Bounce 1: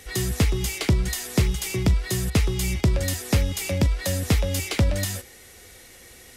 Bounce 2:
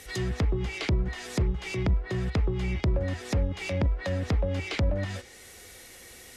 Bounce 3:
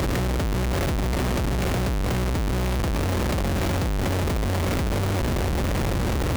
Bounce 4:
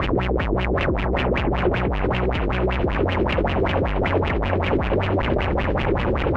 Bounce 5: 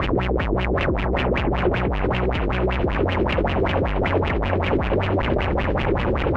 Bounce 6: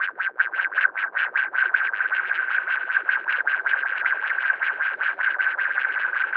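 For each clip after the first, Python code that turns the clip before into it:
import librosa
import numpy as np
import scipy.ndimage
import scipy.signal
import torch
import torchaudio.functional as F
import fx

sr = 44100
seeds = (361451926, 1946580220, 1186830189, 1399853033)

y1 = fx.env_lowpass_down(x, sr, base_hz=930.0, full_db=-18.0)
y1 = fx.low_shelf(y1, sr, hz=220.0, db=-3.5)
y1 = fx.transient(y1, sr, attack_db=-6, sustain_db=-1)
y2 = fx.bin_compress(y1, sr, power=0.2)
y2 = fx.peak_eq(y2, sr, hz=6700.0, db=3.5, octaves=0.33)
y2 = fx.schmitt(y2, sr, flips_db=-24.5)
y2 = y2 * 10.0 ** (-2.0 / 20.0)
y3 = fx.filter_lfo_lowpass(y2, sr, shape='sine', hz=5.2, low_hz=350.0, high_hz=2900.0, q=5.2)
y3 = fx.echo_stepped(y3, sr, ms=402, hz=720.0, octaves=0.7, feedback_pct=70, wet_db=-4)
y4 = y3
y5 = fx.reverse_delay(y4, sr, ms=406, wet_db=-4.0)
y5 = fx.ladder_bandpass(y5, sr, hz=1600.0, resonance_pct=90)
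y5 = y5 * 10.0 ** (7.0 / 20.0)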